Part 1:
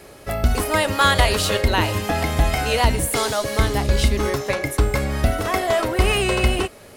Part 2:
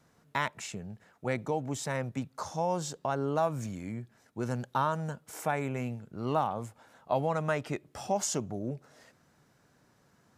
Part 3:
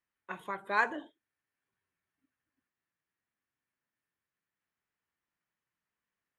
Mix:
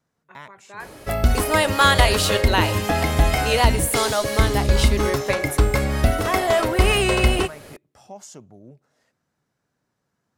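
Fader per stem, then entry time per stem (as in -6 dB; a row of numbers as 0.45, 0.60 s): +1.0, -10.0, -9.0 dB; 0.80, 0.00, 0.00 s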